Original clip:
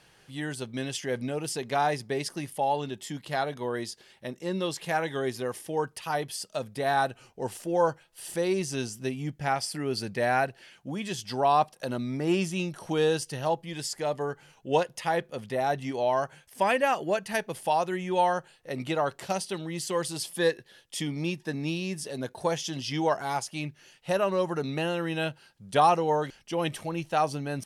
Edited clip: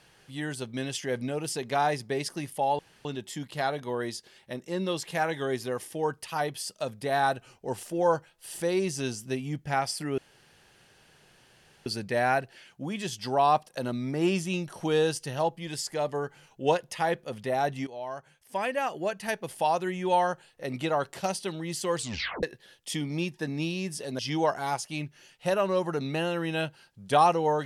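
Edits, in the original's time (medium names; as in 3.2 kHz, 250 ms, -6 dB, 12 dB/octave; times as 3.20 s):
2.79 s: insert room tone 0.26 s
9.92 s: insert room tone 1.68 s
15.93–17.80 s: fade in, from -14 dB
20.02 s: tape stop 0.47 s
22.25–22.82 s: delete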